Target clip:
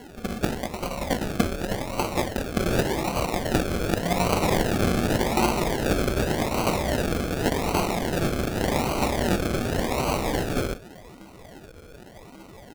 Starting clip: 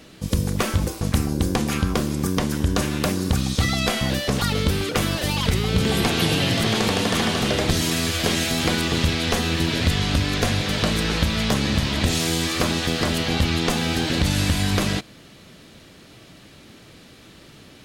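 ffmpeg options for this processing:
ffmpeg -i in.wav -filter_complex "[0:a]flanger=delay=16:depth=7:speed=0.14,highpass=frequency=350:width=0.5412,highpass=frequency=350:width=1.3066,aecho=1:1:6.4:0.94,aeval=exprs='val(0)+0.00631*sin(2*PI*1700*n/s)':channel_layout=same,asplit=2[link_01][link_02];[link_02]aecho=0:1:78:0.2[link_03];[link_01][link_03]amix=inputs=2:normalize=0,acrusher=bits=3:mode=log:mix=0:aa=0.000001,aeval=exprs='val(0)*sin(2*PI*260*n/s)':channel_layout=same,acrusher=samples=36:mix=1:aa=0.000001:lfo=1:lforange=21.6:lforate=0.62,atempo=1.4,volume=4.5dB" out.wav

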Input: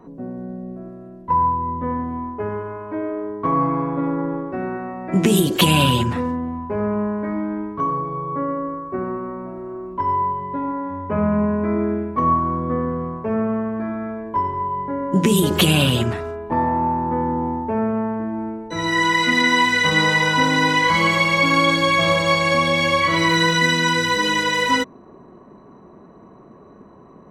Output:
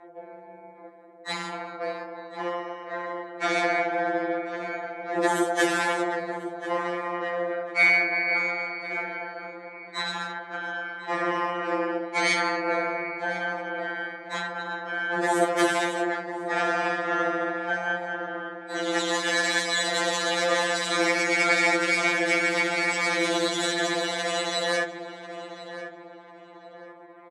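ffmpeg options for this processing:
ffmpeg -i in.wav -filter_complex "[0:a]highshelf=frequency=2200:width_type=q:width=1.5:gain=-8.5,asplit=2[link_01][link_02];[link_02]asoftclip=type=hard:threshold=-18dB,volume=-9dB[link_03];[link_01][link_03]amix=inputs=2:normalize=0,aeval=exprs='0.75*(cos(1*acos(clip(val(0)/0.75,-1,1)))-cos(1*PI/2))+0.0668*(cos(2*acos(clip(val(0)/0.75,-1,1)))-cos(2*PI/2))+0.0188*(cos(4*acos(clip(val(0)/0.75,-1,1)))-cos(4*PI/2))+0.0237*(cos(6*acos(clip(val(0)/0.75,-1,1)))-cos(6*PI/2))+0.133*(cos(8*acos(clip(val(0)/0.75,-1,1)))-cos(8*PI/2))':channel_layout=same,asplit=4[link_04][link_05][link_06][link_07];[link_05]asetrate=37084,aresample=44100,atempo=1.18921,volume=-12dB[link_08];[link_06]asetrate=52444,aresample=44100,atempo=0.840896,volume=-17dB[link_09];[link_07]asetrate=88200,aresample=44100,atempo=0.5,volume=-9dB[link_10];[link_04][link_08][link_09][link_10]amix=inputs=4:normalize=0,tremolo=f=180:d=0.75,highpass=frequency=380:width=0.5412,highpass=frequency=380:width=1.3066,equalizer=frequency=700:width_type=q:width=4:gain=4,equalizer=frequency=1100:width_type=q:width=4:gain=-3,equalizer=frequency=1700:width_type=q:width=4:gain=7,equalizer=frequency=2800:width_type=q:width=4:gain=-8,equalizer=frequency=4700:width_type=q:width=4:gain=-4,equalizer=frequency=8000:width_type=q:width=4:gain=3,lowpass=frequency=9500:width=0.5412,lowpass=frequency=9500:width=1.3066,asplit=2[link_11][link_12];[link_12]adelay=1043,lowpass=frequency=1800:poles=1,volume=-10.5dB,asplit=2[link_13][link_14];[link_14]adelay=1043,lowpass=frequency=1800:poles=1,volume=0.42,asplit=2[link_15][link_16];[link_16]adelay=1043,lowpass=frequency=1800:poles=1,volume=0.42,asplit=2[link_17][link_18];[link_18]adelay=1043,lowpass=frequency=1800:poles=1,volume=0.42[link_19];[link_13][link_15][link_17][link_19]amix=inputs=4:normalize=0[link_20];[link_11][link_20]amix=inputs=2:normalize=0,afftfilt=real='re*2.83*eq(mod(b,8),0)':imag='im*2.83*eq(mod(b,8),0)':win_size=2048:overlap=0.75" out.wav

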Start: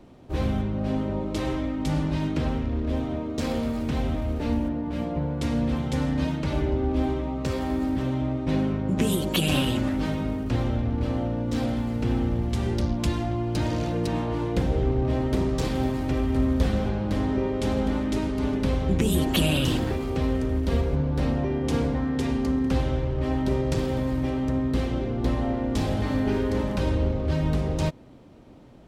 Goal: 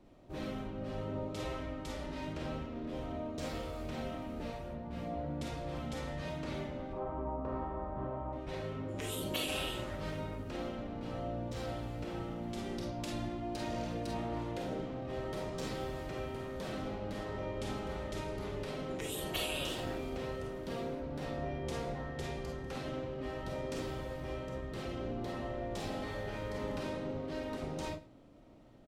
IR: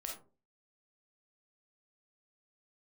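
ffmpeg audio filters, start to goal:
-filter_complex "[0:a]asettb=1/sr,asplit=3[link_01][link_02][link_03];[link_01]atrim=end=6.934[link_04];[link_02]atrim=start=6.93:end=8.33,asetpts=PTS-STARTPTS,afade=type=in:duration=0.004:curve=qsin,afade=type=out:start_time=1.396:duration=0.004:curve=qsin,lowpass=frequency=1000:width_type=q:width=2.4[link_05];[link_03]atrim=start=8.326[link_06];[link_04][link_05]acrossfade=duration=0.004:curve1=hsin:curve2=qsin[link_07];[link_07][link_06]acrossfade=duration=0.004:curve1=qsin:curve2=hsin,aecho=1:1:108:0.0944[link_08];[1:a]atrim=start_sample=2205,atrim=end_sample=4410[link_09];[link_08][link_09]afir=irnorm=-1:irlink=0,afftfilt=real='re*lt(hypot(re,im),0.251)':imag='im*lt(hypot(re,im),0.251)':win_size=1024:overlap=0.75,volume=-7dB"

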